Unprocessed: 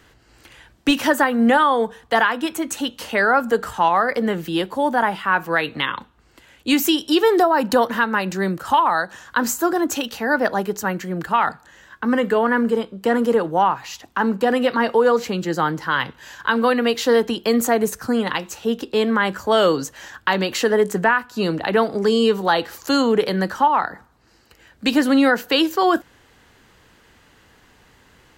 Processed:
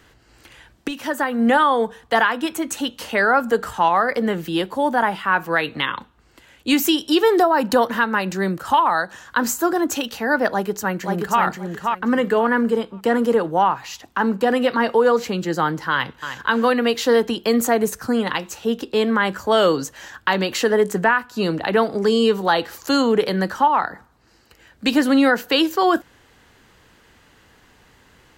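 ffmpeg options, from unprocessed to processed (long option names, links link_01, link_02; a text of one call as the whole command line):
ffmpeg -i in.wav -filter_complex "[0:a]asplit=2[link_01][link_02];[link_02]afade=type=in:start_time=10.5:duration=0.01,afade=type=out:start_time=11.41:duration=0.01,aecho=0:1:530|1060|1590:0.668344|0.133669|0.0267338[link_03];[link_01][link_03]amix=inputs=2:normalize=0,asplit=2[link_04][link_05];[link_05]afade=type=in:start_time=15.91:duration=0.01,afade=type=out:start_time=16.44:duration=0.01,aecho=0:1:310|620:0.334965|0.0502448[link_06];[link_04][link_06]amix=inputs=2:normalize=0,asplit=2[link_07][link_08];[link_07]atrim=end=0.88,asetpts=PTS-STARTPTS,afade=type=out:start_time=0.876:duration=0.004:curve=hsin:silence=0.199526[link_09];[link_08]atrim=start=0.88,asetpts=PTS-STARTPTS,afade=type=in:duration=0.71:silence=0.199526[link_10];[link_09][link_10]concat=n=2:v=0:a=1" out.wav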